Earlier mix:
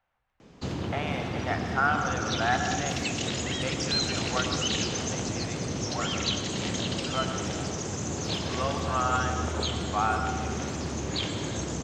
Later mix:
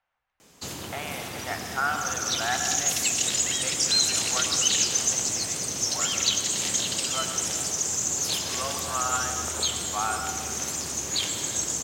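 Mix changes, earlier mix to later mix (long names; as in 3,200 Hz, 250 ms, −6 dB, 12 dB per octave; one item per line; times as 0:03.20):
background: remove high-frequency loss of the air 170 metres
master: add low-shelf EQ 500 Hz −10 dB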